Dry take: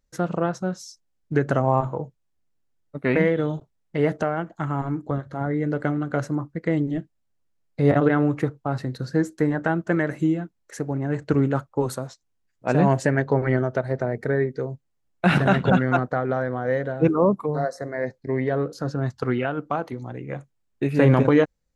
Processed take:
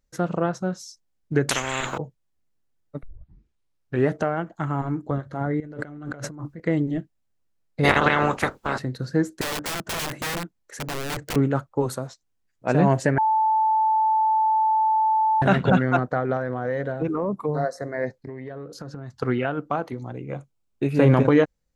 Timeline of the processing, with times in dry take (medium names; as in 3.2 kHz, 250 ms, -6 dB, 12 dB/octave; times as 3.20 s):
1.49–1.98 s: spectrum-flattening compressor 10:1
3.03 s: tape start 1.10 s
5.60–6.60 s: compressor with a negative ratio -36 dBFS
7.83–8.78 s: spectral peaks clipped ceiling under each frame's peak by 28 dB
9.41–11.36 s: integer overflow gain 23.5 dB
13.18–15.42 s: bleep 876 Hz -17 dBFS
16.36–17.45 s: compression, threshold -21 dBFS
18.22–19.18 s: compression 16:1, threshold -31 dBFS
20.11–21.09 s: peaking EQ 1.8 kHz -14.5 dB -> -7 dB 0.23 oct